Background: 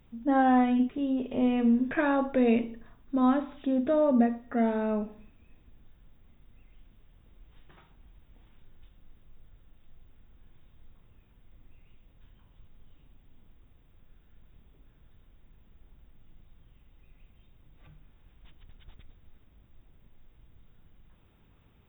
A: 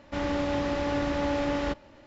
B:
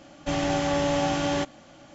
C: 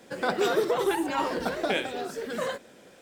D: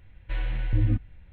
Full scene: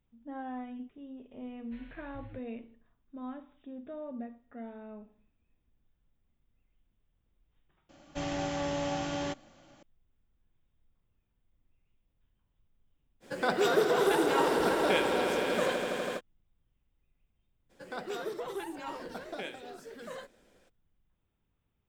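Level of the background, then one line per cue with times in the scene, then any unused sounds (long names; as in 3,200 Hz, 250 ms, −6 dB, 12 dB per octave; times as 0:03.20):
background −17.5 dB
0:01.42: mix in D −16.5 dB + low-shelf EQ 380 Hz −10 dB
0:07.89: mix in B −8.5 dB
0:13.20: mix in C −2 dB, fades 0.05 s + echo that builds up and dies away 82 ms, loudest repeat 5, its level −10 dB
0:17.69: mix in C −12.5 dB, fades 0.02 s
not used: A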